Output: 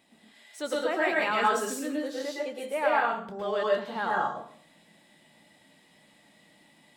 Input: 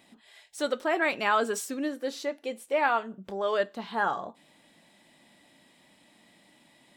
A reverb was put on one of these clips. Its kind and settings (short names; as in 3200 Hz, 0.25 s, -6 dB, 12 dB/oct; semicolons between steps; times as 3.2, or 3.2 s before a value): plate-style reverb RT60 0.5 s, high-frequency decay 0.85×, pre-delay 0.1 s, DRR -4 dB; gain -5 dB